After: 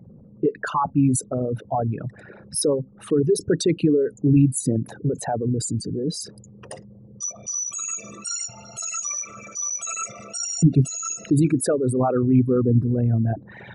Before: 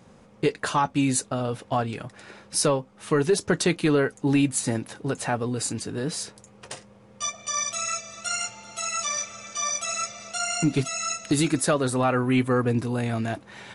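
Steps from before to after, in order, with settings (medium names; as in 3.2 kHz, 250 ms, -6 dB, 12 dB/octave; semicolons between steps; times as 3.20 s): resonances exaggerated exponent 3; peaking EQ 140 Hz +9.5 dB 1.5 oct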